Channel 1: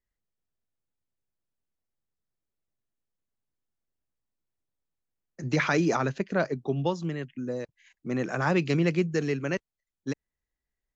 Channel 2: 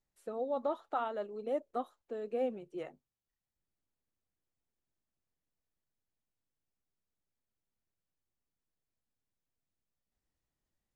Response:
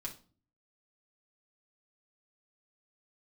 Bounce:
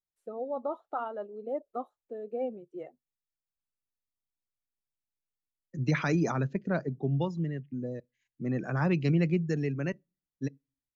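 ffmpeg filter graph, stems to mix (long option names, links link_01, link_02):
-filter_complex "[0:a]bass=frequency=250:gain=8,treble=frequency=4000:gain=3,adelay=350,volume=-6.5dB,asplit=2[link_01][link_02];[link_02]volume=-18.5dB[link_03];[1:a]volume=0.5dB[link_04];[2:a]atrim=start_sample=2205[link_05];[link_03][link_05]afir=irnorm=-1:irlink=0[link_06];[link_01][link_04][link_06]amix=inputs=3:normalize=0,afftdn=noise_reduction=15:noise_floor=-44"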